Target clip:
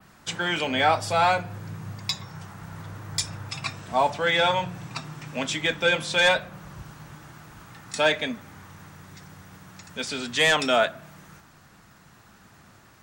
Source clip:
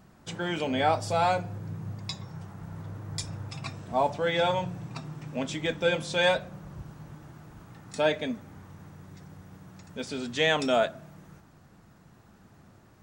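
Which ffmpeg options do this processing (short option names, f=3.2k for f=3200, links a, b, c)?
-filter_complex "[0:a]adynamicequalizer=threshold=0.00282:dfrequency=6600:dqfactor=0.83:tfrequency=6600:tqfactor=0.83:attack=5:release=100:ratio=0.375:range=3.5:mode=cutabove:tftype=bell,acrossover=split=220|1000[a][b][c];[c]aeval=exprs='0.188*sin(PI/2*2*val(0)/0.188)':c=same[d];[a][b][d]amix=inputs=3:normalize=0"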